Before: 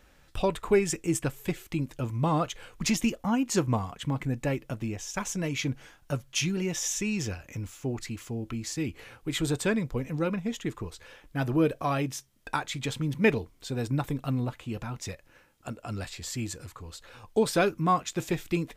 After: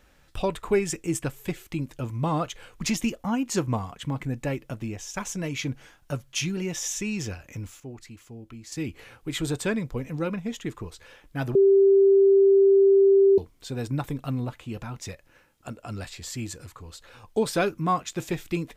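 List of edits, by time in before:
0:07.80–0:08.72: clip gain −8.5 dB
0:11.55–0:13.38: beep over 392 Hz −13.5 dBFS

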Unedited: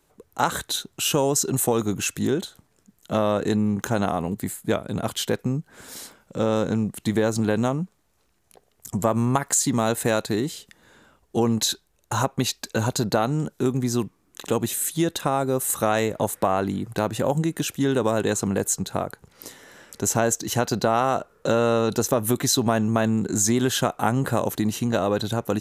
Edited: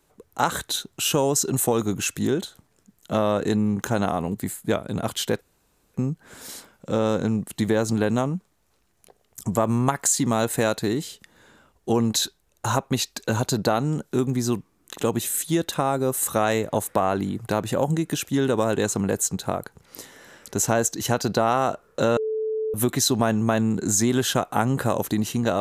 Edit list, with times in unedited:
0:05.41: splice in room tone 0.53 s
0:21.64–0:22.21: beep over 437 Hz −23 dBFS

